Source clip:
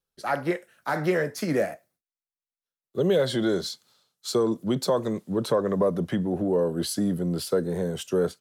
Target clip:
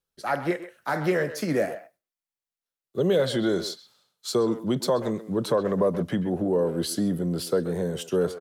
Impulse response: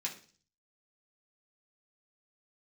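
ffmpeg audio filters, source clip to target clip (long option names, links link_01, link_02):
-filter_complex "[0:a]asplit=2[link_01][link_02];[link_02]adelay=130,highpass=300,lowpass=3400,asoftclip=type=hard:threshold=-20.5dB,volume=-12dB[link_03];[link_01][link_03]amix=inputs=2:normalize=0"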